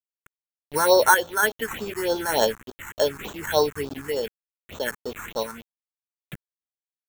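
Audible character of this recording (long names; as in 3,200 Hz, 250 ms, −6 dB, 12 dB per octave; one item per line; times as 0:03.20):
a quantiser's noise floor 6 bits, dither none
sample-and-hold tremolo 3.5 Hz
aliases and images of a low sample rate 4,900 Hz, jitter 0%
phaser sweep stages 4, 3.4 Hz, lowest notch 530–2,200 Hz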